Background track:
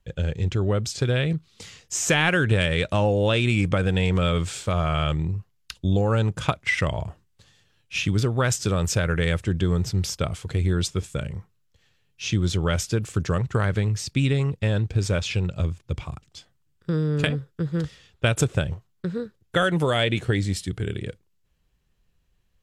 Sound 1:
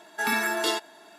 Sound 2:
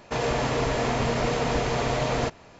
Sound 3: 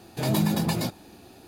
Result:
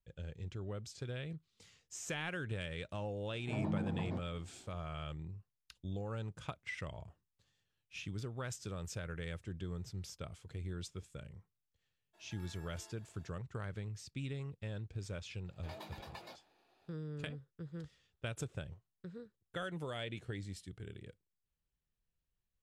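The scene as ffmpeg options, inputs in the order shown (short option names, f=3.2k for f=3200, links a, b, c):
-filter_complex "[3:a]asplit=2[a][b];[0:a]volume=-20dB[c];[a]lowpass=1.1k[d];[1:a]acompressor=threshold=-38dB:ratio=6:attack=1.3:release=150:knee=1:detection=peak[e];[b]acrossover=split=450 4500:gain=0.0794 1 0.158[f][g][h];[f][g][h]amix=inputs=3:normalize=0[i];[d]atrim=end=1.47,asetpts=PTS-STARTPTS,volume=-13dB,afade=t=in:d=0.004:c=hsin,afade=t=out:st=1.466:d=0.004:c=hsin,adelay=3300[j];[e]atrim=end=1.18,asetpts=PTS-STARTPTS,volume=-18dB,afade=t=in:d=0.02,afade=t=out:st=1.16:d=0.02,adelay=12130[k];[i]atrim=end=1.47,asetpts=PTS-STARTPTS,volume=-17dB,afade=t=in:d=0.004:c=hsin,afade=t=out:st=1.466:d=0.004:c=hsin,adelay=15460[l];[c][j][k][l]amix=inputs=4:normalize=0"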